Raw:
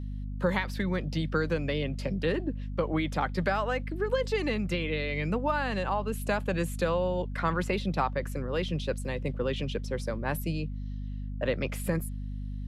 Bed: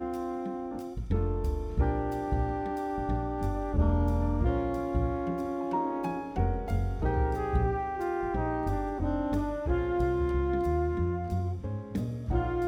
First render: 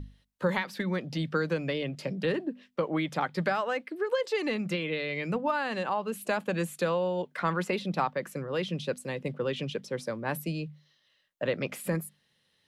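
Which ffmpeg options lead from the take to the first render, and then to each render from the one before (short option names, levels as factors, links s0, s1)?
-af "bandreject=f=50:t=h:w=6,bandreject=f=100:t=h:w=6,bandreject=f=150:t=h:w=6,bandreject=f=200:t=h:w=6,bandreject=f=250:t=h:w=6"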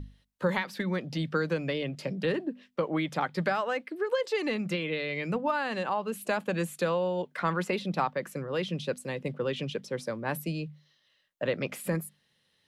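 -af anull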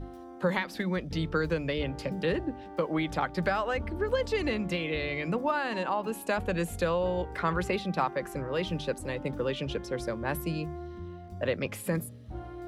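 -filter_complex "[1:a]volume=0.251[s0];[0:a][s0]amix=inputs=2:normalize=0"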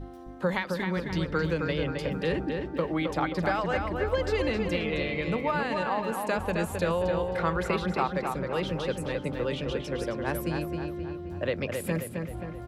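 -filter_complex "[0:a]asplit=2[s0][s1];[s1]adelay=265,lowpass=f=3700:p=1,volume=0.596,asplit=2[s2][s3];[s3]adelay=265,lowpass=f=3700:p=1,volume=0.54,asplit=2[s4][s5];[s5]adelay=265,lowpass=f=3700:p=1,volume=0.54,asplit=2[s6][s7];[s7]adelay=265,lowpass=f=3700:p=1,volume=0.54,asplit=2[s8][s9];[s9]adelay=265,lowpass=f=3700:p=1,volume=0.54,asplit=2[s10][s11];[s11]adelay=265,lowpass=f=3700:p=1,volume=0.54,asplit=2[s12][s13];[s13]adelay=265,lowpass=f=3700:p=1,volume=0.54[s14];[s0][s2][s4][s6][s8][s10][s12][s14]amix=inputs=8:normalize=0"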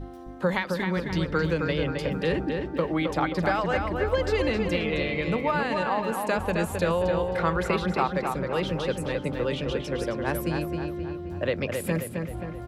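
-af "volume=1.33"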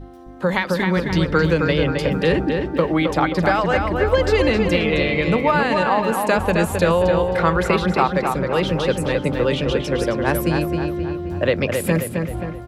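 -af "dynaudnorm=f=320:g=3:m=2.66"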